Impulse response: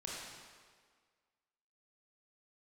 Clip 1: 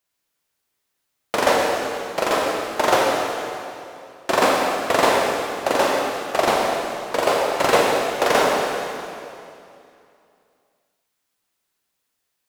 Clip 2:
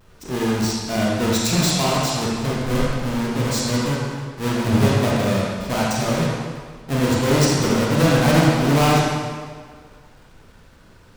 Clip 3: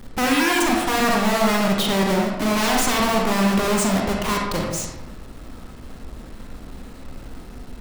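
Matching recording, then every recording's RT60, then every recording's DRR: 2; 2.6 s, 1.7 s, 1.0 s; -2.0 dB, -5.0 dB, -1.0 dB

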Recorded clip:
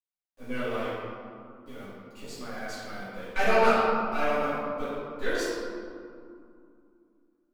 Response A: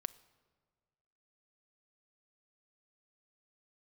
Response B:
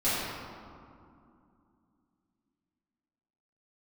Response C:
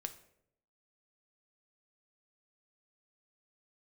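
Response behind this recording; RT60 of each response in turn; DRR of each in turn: B; 1.6 s, 2.5 s, 0.75 s; 13.0 dB, -14.0 dB, 8.0 dB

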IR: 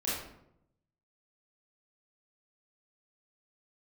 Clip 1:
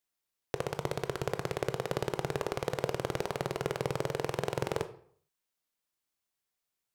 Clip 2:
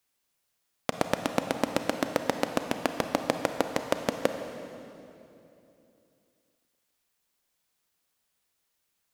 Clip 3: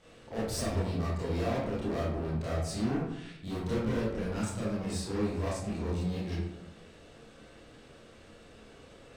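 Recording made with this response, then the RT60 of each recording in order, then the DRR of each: 3; 0.60 s, 2.9 s, 0.80 s; 9.5 dB, 6.5 dB, -9.0 dB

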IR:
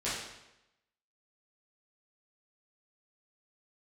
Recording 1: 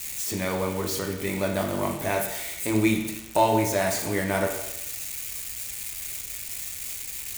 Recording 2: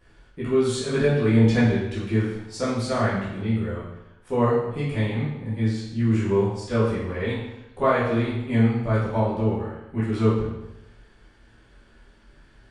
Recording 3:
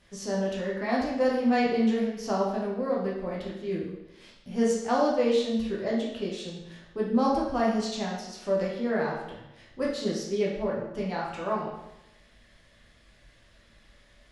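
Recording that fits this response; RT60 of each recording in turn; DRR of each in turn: 2; 0.90 s, 0.90 s, 0.90 s; 1.0 dB, -11.0 dB, -5.0 dB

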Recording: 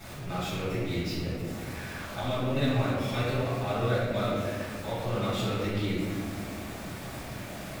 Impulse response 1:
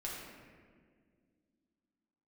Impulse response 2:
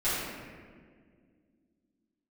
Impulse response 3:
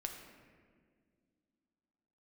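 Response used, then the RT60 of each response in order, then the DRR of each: 2; 1.9 s, 1.9 s, 1.9 s; -5.0 dB, -15.0 dB, 2.5 dB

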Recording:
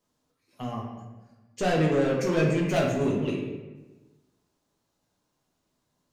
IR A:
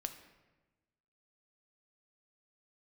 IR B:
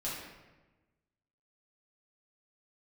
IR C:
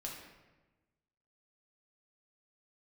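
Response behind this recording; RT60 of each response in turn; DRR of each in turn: C; 1.2 s, 1.2 s, 1.2 s; 7.0 dB, -8.5 dB, -2.5 dB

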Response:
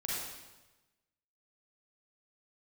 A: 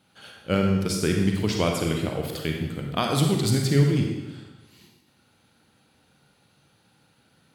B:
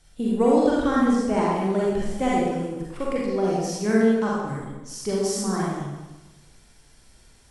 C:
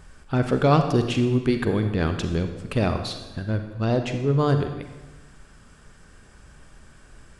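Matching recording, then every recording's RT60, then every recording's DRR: B; 1.1 s, 1.1 s, 1.1 s; 1.5 dB, -6.0 dB, 6.5 dB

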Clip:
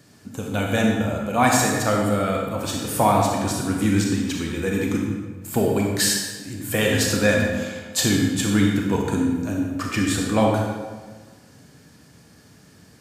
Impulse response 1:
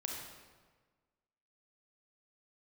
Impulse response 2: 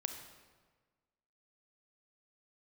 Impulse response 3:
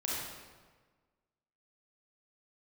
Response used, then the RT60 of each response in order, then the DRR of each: 1; 1.4 s, 1.4 s, 1.4 s; -0.5 dB, 6.0 dB, -6.0 dB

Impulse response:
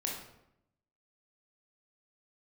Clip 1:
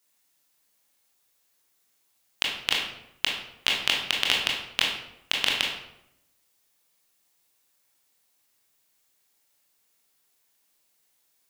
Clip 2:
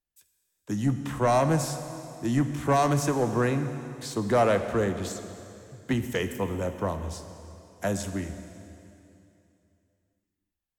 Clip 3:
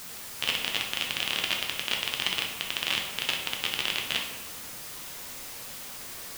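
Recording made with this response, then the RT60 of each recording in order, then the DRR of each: 1; 0.80 s, 2.8 s, 1.2 s; -2.0 dB, 8.5 dB, 0.0 dB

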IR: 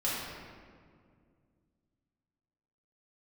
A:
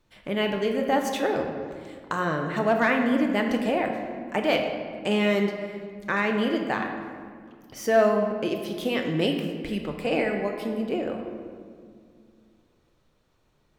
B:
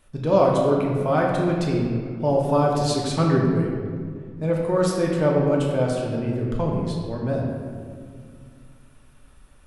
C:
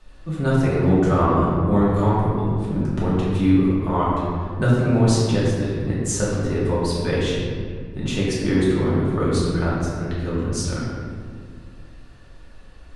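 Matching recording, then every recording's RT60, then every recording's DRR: C; 2.1 s, 2.1 s, 2.1 s; 2.5 dB, -2.5 dB, -8.0 dB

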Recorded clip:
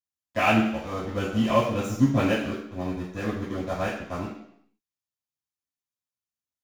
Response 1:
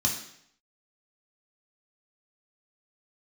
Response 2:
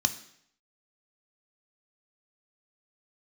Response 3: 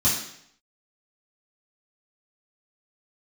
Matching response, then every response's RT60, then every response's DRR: 3; 0.70 s, 0.70 s, 0.70 s; -1.0 dB, 8.5 dB, -10.0 dB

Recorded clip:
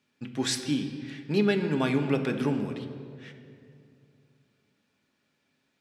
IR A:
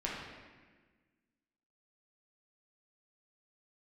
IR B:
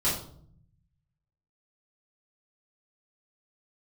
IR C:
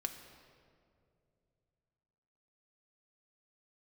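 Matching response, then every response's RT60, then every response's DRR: C; 1.4 s, 0.60 s, 2.5 s; -5.0 dB, -10.5 dB, 4.5 dB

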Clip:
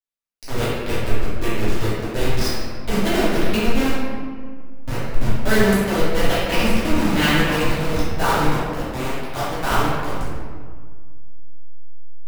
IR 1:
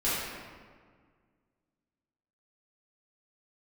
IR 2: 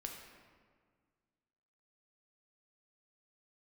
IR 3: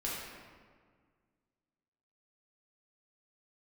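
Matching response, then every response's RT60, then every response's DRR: 1; 1.7 s, 1.8 s, 1.7 s; -11.5 dB, 1.0 dB, -6.5 dB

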